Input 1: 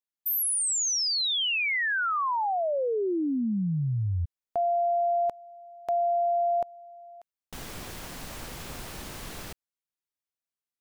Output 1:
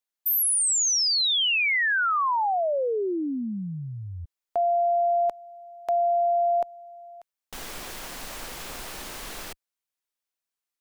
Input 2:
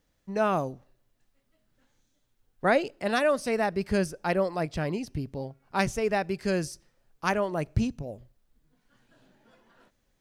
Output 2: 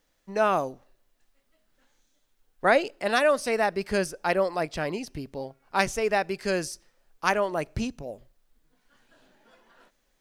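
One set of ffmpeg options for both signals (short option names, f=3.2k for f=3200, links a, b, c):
-af "equalizer=f=100:w=0.5:g=-12.5,volume=4dB"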